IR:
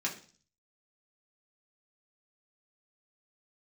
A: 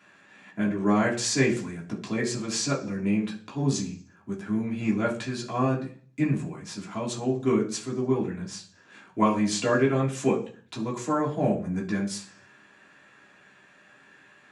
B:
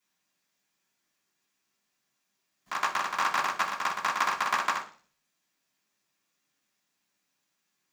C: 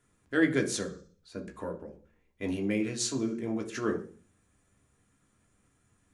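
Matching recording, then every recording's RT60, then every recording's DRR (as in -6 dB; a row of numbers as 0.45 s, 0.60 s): A; 0.40 s, 0.40 s, 0.40 s; -4.0 dB, -10.0 dB, 2.0 dB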